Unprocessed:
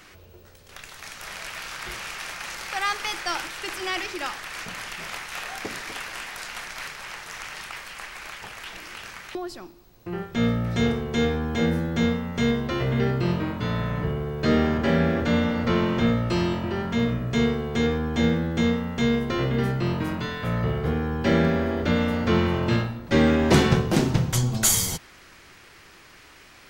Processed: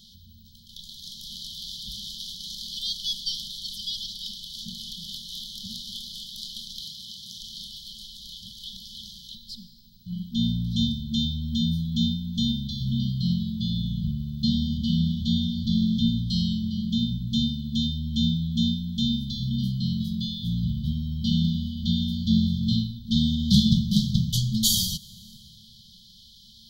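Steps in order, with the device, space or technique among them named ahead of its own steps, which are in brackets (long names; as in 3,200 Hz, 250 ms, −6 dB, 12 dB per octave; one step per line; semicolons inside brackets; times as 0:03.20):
compressed reverb return (on a send at −11 dB: convolution reverb RT60 1.5 s, pre-delay 39 ms + downward compressor 10 to 1, threshold −31 dBFS, peak gain reduction 18 dB)
0:06.80–0:07.41: on the sum: high-pass filter 54 Hz
brick-wall band-stop 230–3,000 Hz
octave-band graphic EQ 125/250/500/1,000/2,000/4,000/8,000 Hz −4/+6/+11/+3/−6/+11/−10 dB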